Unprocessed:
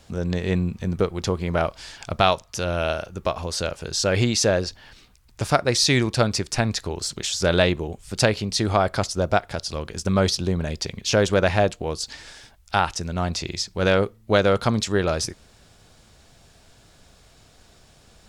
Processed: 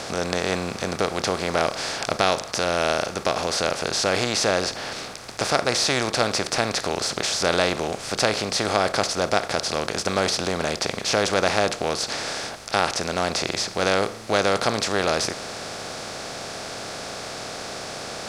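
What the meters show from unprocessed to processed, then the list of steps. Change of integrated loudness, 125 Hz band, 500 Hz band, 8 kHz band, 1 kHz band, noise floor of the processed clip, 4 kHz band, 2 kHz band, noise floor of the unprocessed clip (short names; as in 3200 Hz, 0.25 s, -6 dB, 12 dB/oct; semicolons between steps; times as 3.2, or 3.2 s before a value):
-1.0 dB, -8.5 dB, -0.5 dB, +2.0 dB, +2.0 dB, -36 dBFS, +2.5 dB, +2.5 dB, -55 dBFS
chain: per-bin compression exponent 0.4; low shelf 190 Hz -11.5 dB; gain -5.5 dB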